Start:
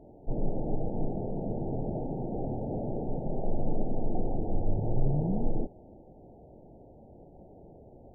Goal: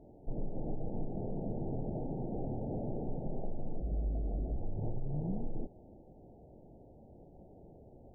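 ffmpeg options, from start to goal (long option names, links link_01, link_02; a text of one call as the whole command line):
ffmpeg -i in.wav -filter_complex "[0:a]lowshelf=frequency=430:gain=4,alimiter=limit=-16.5dB:level=0:latency=1:release=142,acompressor=threshold=-24dB:ratio=6,asettb=1/sr,asplit=3[link_01][link_02][link_03];[link_01]atrim=end=3.804[link_04];[link_02]atrim=start=3.8:end=4.56,asetpts=PTS-STARTPTS,afade=type=in:duration=0.004:curve=qsin,afade=type=out:start_time=0.756:duration=0.004:curve=qsin,afreqshift=-66[link_05];[link_03]atrim=start=4.556[link_06];[link_04][link_05]acrossfade=duration=0.004:curve1=hsin:curve2=qsin[link_07];[link_07][link_06]acrossfade=duration=0.004:curve1=qsin:curve2=hsin,volume=-6.5dB" out.wav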